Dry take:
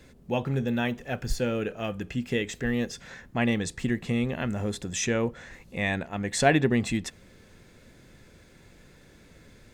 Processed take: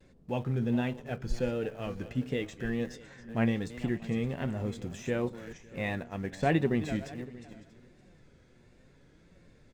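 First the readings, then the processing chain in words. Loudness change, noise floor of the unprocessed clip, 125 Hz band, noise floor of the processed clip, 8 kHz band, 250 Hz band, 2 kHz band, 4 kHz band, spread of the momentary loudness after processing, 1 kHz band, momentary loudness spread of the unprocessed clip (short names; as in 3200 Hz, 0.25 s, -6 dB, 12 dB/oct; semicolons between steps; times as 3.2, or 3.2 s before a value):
-4.5 dB, -55 dBFS, -2.5 dB, -60 dBFS, -17.0 dB, -3.5 dB, -8.0 dB, -10.0 dB, 13 LU, -6.0 dB, 10 LU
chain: regenerating reverse delay 0.279 s, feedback 40%, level -14 dB; de-esser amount 75%; LPF 8400 Hz 12 dB/oct; tilt shelf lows +3 dB, about 1100 Hz; in parallel at -11.5 dB: sample gate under -32.5 dBFS; on the sum: flange 0.75 Hz, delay 5.3 ms, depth 3.5 ms, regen +66%; vibrato 1.4 Hz 69 cents; echo 0.636 s -21 dB; gain -4 dB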